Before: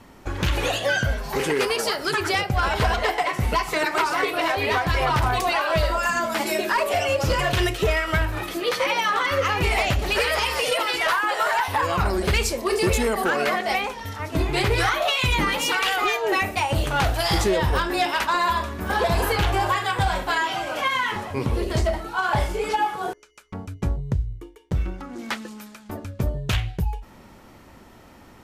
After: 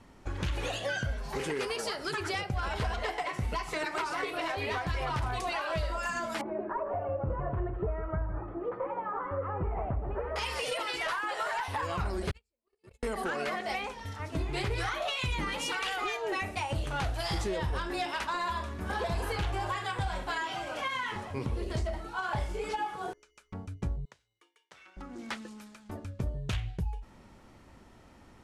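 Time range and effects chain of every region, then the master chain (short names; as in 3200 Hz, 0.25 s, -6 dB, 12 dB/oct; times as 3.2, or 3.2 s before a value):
6.41–10.36 LPF 1200 Hz 24 dB/oct + echo 0.158 s -11.5 dB
12.31–13.03 gate -16 dBFS, range -54 dB + notch 5900 Hz, Q 6.1
24.05–24.97 HPF 1300 Hz + high shelf 11000 Hz -11.5 dB
whole clip: LPF 11000 Hz 24 dB/oct; low shelf 130 Hz +5 dB; compressor 2.5:1, threshold -21 dBFS; gain -9 dB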